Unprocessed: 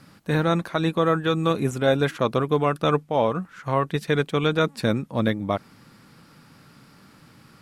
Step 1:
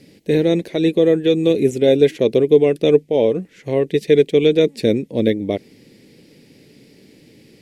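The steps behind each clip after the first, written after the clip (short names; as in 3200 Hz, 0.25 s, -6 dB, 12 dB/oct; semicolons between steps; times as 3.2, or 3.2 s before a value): EQ curve 160 Hz 0 dB, 430 Hz +13 dB, 1300 Hz -22 dB, 2000 Hz +4 dB, 7000 Hz +3 dB, 9900 Hz +1 dB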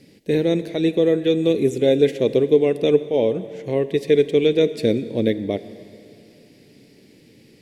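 plate-style reverb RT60 2.7 s, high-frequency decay 0.9×, DRR 13 dB; gain -3 dB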